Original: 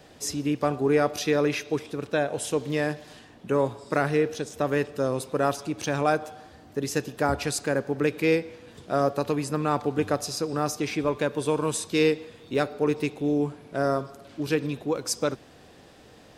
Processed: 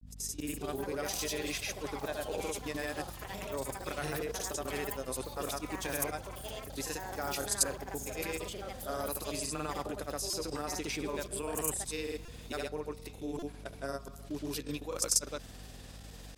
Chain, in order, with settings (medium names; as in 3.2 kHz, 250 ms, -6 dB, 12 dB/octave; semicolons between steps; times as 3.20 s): fade-in on the opening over 0.62 s; RIAA curve recording; time-frequency box 11.29–11.77 s, 3.1–7.2 kHz -12 dB; peaking EQ 200 Hz +4 dB 2.3 oct; level held to a coarse grid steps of 17 dB; hum 50 Hz, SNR 11 dB; granulator, pitch spread up and down by 0 st; ever faster or slower copies 321 ms, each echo +5 st, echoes 3, each echo -6 dB; buffer glitch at 10.30/12.25/13.39 s, samples 128, times 10; trim -1.5 dB